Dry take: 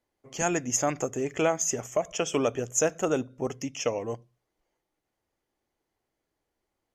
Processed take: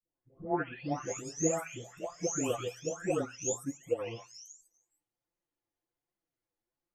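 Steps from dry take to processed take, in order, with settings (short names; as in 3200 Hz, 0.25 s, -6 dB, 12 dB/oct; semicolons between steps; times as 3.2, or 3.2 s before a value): spectral delay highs late, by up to 0.843 s; flange 1.3 Hz, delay 4.9 ms, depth 5.5 ms, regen +31%; upward expander 1.5:1, over -41 dBFS; gain +2 dB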